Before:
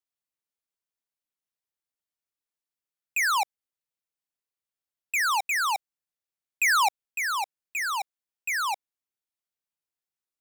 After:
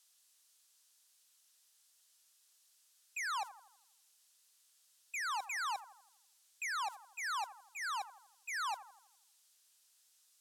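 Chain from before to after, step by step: zero-crossing glitches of -34.5 dBFS; gate -31 dBFS, range -11 dB; Bessel low-pass 7.1 kHz, order 2; peaking EQ 2.2 kHz -5.5 dB 0.49 oct; peak limiter -26.5 dBFS, peak gain reduction 7 dB; bucket-brigade echo 82 ms, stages 1024, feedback 49%, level -15 dB; trim -8.5 dB

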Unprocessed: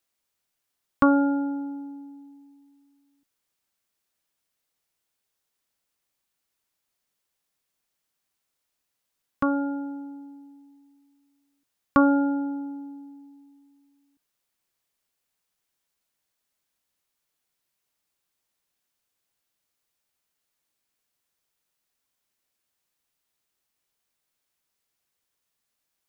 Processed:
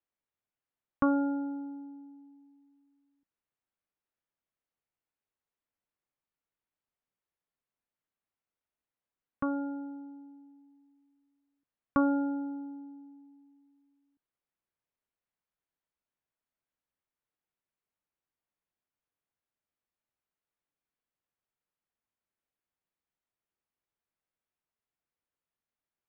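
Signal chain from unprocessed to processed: distance through air 490 m; trim -6.5 dB

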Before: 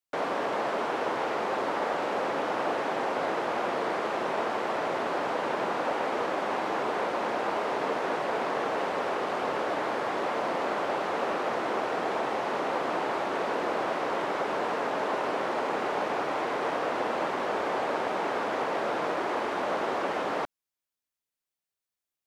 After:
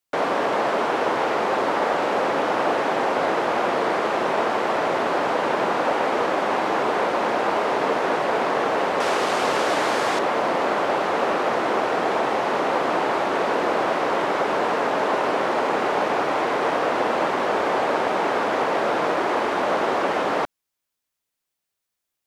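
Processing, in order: 9.00–10.19 s: peaking EQ 8.4 kHz +11 dB 2.4 oct; trim +7.5 dB

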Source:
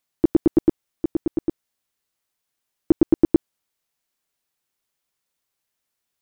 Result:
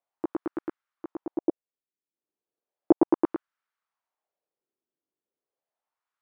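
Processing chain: 1.37–3.26 s: transient shaper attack +7 dB, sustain -11 dB; wah-wah 0.35 Hz 320–1400 Hz, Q 2.4; trim +3.5 dB

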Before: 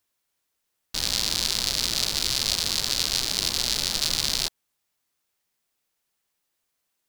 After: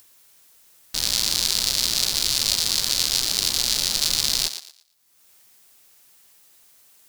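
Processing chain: treble shelf 4.6 kHz +7.5 dB; upward compressor, threshold -38 dBFS; on a send: thinning echo 115 ms, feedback 27%, high-pass 420 Hz, level -10 dB; on the sum: trim -1 dB

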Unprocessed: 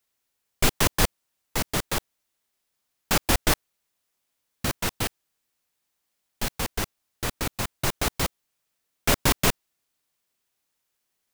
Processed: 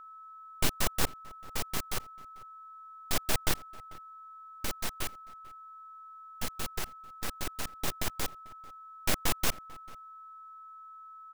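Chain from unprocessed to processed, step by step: full-wave rectifier; echo from a far wall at 76 m, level -21 dB; whistle 1.3 kHz -41 dBFS; trim -5.5 dB

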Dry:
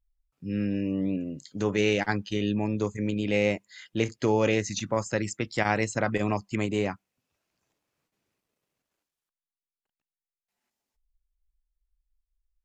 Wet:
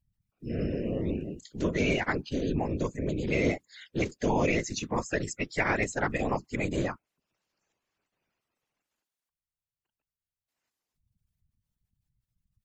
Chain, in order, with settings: coarse spectral quantiser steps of 30 dB; whisper effect; trim -1.5 dB

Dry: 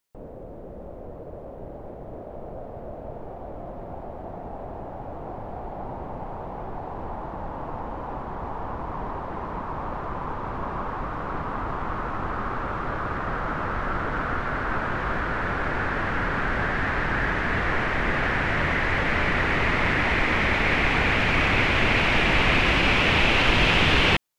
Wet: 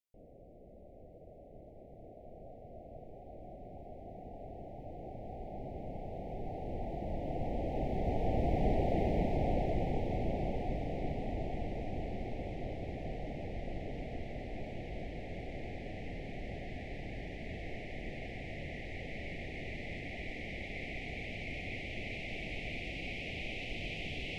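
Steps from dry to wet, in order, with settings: Doppler pass-by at 8.83 s, 15 m/s, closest 14 m; elliptic band-stop 730–2100 Hz, stop band 40 dB; trim +4 dB

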